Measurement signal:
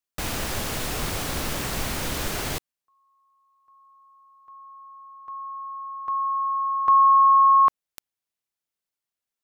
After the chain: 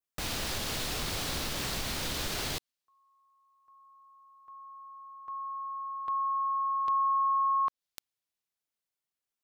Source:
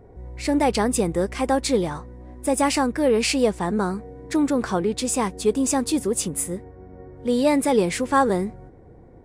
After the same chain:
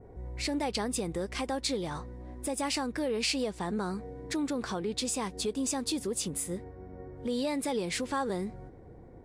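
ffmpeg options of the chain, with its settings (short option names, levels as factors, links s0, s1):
-af "acompressor=threshold=0.0501:ratio=3:attack=0.46:release=384:knee=1:detection=peak,adynamicequalizer=threshold=0.00251:dfrequency=4100:dqfactor=1.1:tfrequency=4100:tqfactor=1.1:attack=5:release=100:ratio=0.375:range=3.5:mode=boostabove:tftype=bell,volume=0.708"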